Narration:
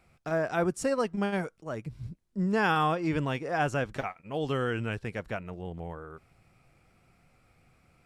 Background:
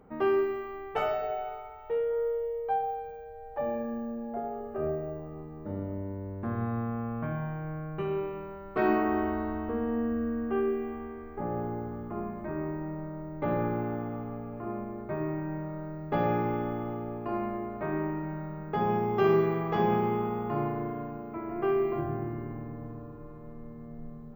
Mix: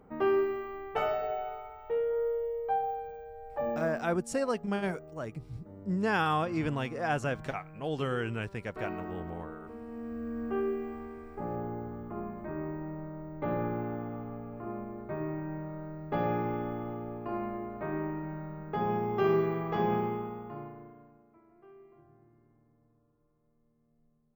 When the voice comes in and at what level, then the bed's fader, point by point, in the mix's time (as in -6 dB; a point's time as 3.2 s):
3.50 s, -2.5 dB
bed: 3.76 s -1 dB
4.17 s -13.5 dB
9.86 s -13.5 dB
10.45 s -3 dB
19.99 s -3 dB
21.62 s -28 dB